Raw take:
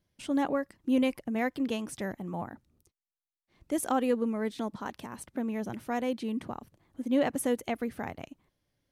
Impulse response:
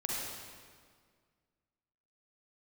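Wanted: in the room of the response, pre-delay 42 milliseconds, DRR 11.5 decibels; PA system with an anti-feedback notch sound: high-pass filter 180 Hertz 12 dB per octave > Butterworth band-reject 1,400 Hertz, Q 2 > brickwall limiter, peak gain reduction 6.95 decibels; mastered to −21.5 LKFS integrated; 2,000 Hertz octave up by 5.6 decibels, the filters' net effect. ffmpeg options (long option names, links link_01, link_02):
-filter_complex "[0:a]equalizer=frequency=2000:width_type=o:gain=9,asplit=2[link_01][link_02];[1:a]atrim=start_sample=2205,adelay=42[link_03];[link_02][link_03]afir=irnorm=-1:irlink=0,volume=-16dB[link_04];[link_01][link_04]amix=inputs=2:normalize=0,highpass=180,asuperstop=centerf=1400:order=8:qfactor=2,volume=12.5dB,alimiter=limit=-10dB:level=0:latency=1"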